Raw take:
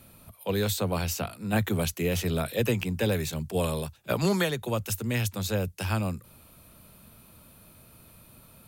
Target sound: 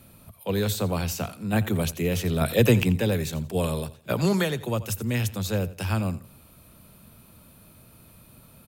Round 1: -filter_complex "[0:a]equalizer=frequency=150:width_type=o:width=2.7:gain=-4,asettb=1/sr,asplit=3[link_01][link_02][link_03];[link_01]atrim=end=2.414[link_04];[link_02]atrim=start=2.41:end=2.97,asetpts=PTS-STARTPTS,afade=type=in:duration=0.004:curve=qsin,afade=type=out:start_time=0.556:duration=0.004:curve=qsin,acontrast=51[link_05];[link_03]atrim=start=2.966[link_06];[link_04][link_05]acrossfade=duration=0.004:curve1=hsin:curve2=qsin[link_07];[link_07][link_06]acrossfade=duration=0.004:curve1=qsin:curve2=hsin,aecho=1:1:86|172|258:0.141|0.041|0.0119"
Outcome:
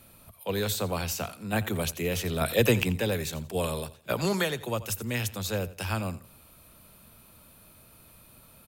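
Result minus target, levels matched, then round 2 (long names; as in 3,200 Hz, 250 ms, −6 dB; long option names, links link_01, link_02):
125 Hz band −3.0 dB
-filter_complex "[0:a]equalizer=frequency=150:width_type=o:width=2.7:gain=3,asettb=1/sr,asplit=3[link_01][link_02][link_03];[link_01]atrim=end=2.414[link_04];[link_02]atrim=start=2.41:end=2.97,asetpts=PTS-STARTPTS,afade=type=in:duration=0.004:curve=qsin,afade=type=out:start_time=0.556:duration=0.004:curve=qsin,acontrast=51[link_05];[link_03]atrim=start=2.966[link_06];[link_04][link_05]acrossfade=duration=0.004:curve1=hsin:curve2=qsin[link_07];[link_07][link_06]acrossfade=duration=0.004:curve1=qsin:curve2=hsin,aecho=1:1:86|172|258:0.141|0.041|0.0119"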